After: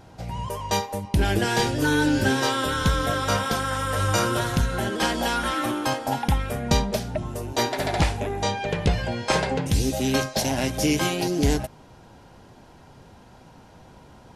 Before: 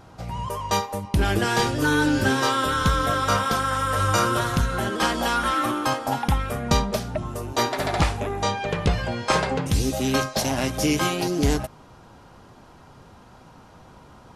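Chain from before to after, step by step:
parametric band 1,200 Hz −9 dB 0.32 octaves

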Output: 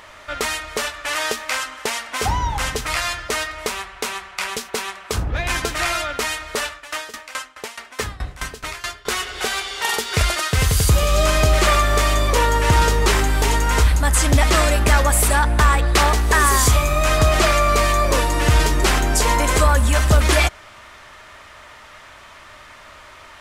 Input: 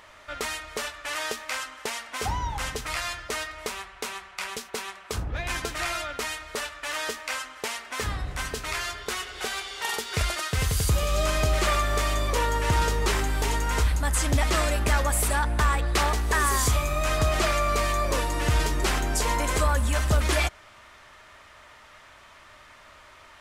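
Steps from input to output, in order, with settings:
0:06.71–0:09.07: tremolo with a ramp in dB decaying 4.7 Hz, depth 19 dB
level +8 dB

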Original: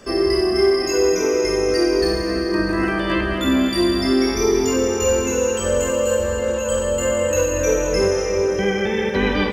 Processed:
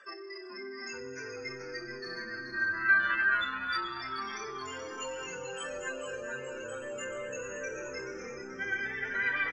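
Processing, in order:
expanding power law on the bin magnitudes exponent 1.9
high shelf with overshoot 7,500 Hz +8.5 dB, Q 1.5
in parallel at −2 dB: brickwall limiter −20 dBFS, peak gain reduction 11 dB
on the sum: high-pass with resonance 1,600 Hz, resonance Q 3.2
high-frequency loss of the air 170 metres
on a send: echo with shifted repeats 431 ms, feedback 60%, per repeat −130 Hz, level −8 dB
on the sum: level −6 dB

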